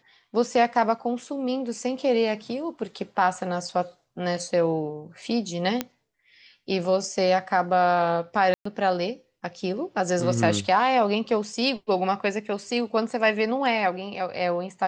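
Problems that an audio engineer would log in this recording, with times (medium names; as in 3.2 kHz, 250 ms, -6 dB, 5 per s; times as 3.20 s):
5.81 s: pop -10 dBFS
8.54–8.65 s: dropout 114 ms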